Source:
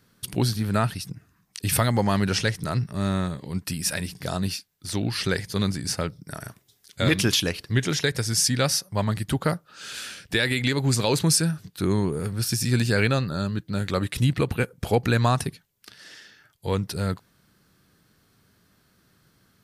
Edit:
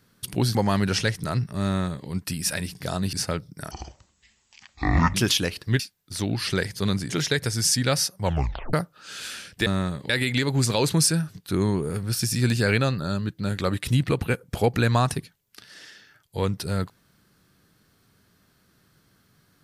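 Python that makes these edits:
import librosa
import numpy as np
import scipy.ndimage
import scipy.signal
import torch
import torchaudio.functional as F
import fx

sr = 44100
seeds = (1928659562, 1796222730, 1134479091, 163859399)

y = fx.edit(x, sr, fx.cut(start_s=0.55, length_s=1.4),
    fx.duplicate(start_s=3.05, length_s=0.43, to_s=10.39),
    fx.move(start_s=4.53, length_s=1.3, to_s=7.82),
    fx.speed_span(start_s=6.41, length_s=0.76, speed=0.53),
    fx.tape_stop(start_s=8.95, length_s=0.51), tone=tone)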